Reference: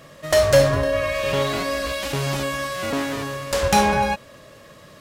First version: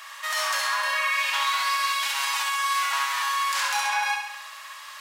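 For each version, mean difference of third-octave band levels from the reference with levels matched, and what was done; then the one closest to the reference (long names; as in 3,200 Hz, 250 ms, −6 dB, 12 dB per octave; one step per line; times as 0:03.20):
15.5 dB: elliptic high-pass filter 900 Hz, stop band 60 dB
downward compressor 3 to 1, threshold −32 dBFS, peak gain reduction 11 dB
brickwall limiter −25 dBFS, peak gain reduction 10 dB
on a send: flutter between parallel walls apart 11.3 metres, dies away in 0.78 s
on the sum: level +8.5 dB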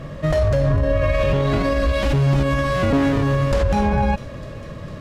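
7.5 dB: RIAA equalisation playback
downward compressor, threshold −13 dBFS, peak gain reduction 8.5 dB
delay with a high-pass on its return 451 ms, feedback 65%, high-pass 3,000 Hz, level −21.5 dB
brickwall limiter −17.5 dBFS, peak gain reduction 11.5 dB
level +7 dB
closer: second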